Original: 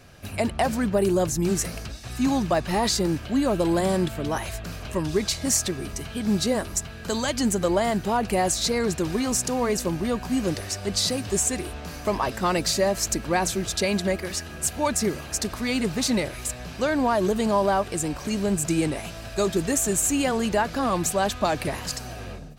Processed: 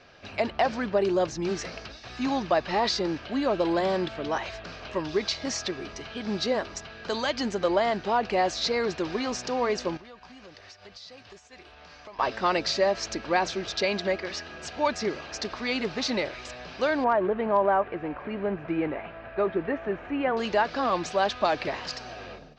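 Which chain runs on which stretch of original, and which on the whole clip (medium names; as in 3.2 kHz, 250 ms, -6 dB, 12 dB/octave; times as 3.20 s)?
9.97–12.19 s: gate -32 dBFS, range -6 dB + peaking EQ 310 Hz -8 dB 1.8 oct + compression 8:1, threshold -40 dBFS
17.04–20.37 s: low-pass 2.2 kHz 24 dB/octave + hard clipper -12 dBFS
whole clip: steep low-pass 5.5 kHz 36 dB/octave; tone controls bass -13 dB, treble -2 dB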